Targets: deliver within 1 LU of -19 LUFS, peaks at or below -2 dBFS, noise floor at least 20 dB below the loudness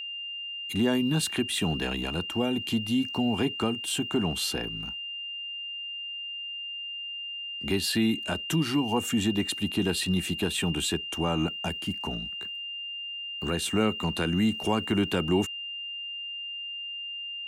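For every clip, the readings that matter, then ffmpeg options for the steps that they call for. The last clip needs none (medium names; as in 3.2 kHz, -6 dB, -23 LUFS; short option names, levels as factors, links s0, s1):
steady tone 2.8 kHz; tone level -34 dBFS; loudness -29.0 LUFS; peak level -12.5 dBFS; loudness target -19.0 LUFS
-> -af "bandreject=f=2800:w=30"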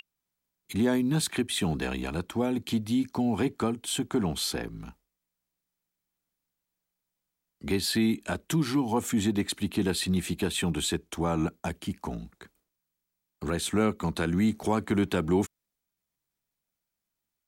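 steady tone not found; loudness -28.5 LUFS; peak level -13.0 dBFS; loudness target -19.0 LUFS
-> -af "volume=2.99"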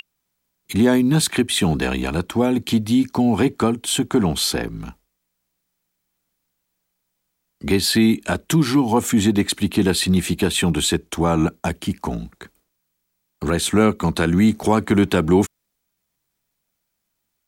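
loudness -19.0 LUFS; peak level -3.0 dBFS; noise floor -76 dBFS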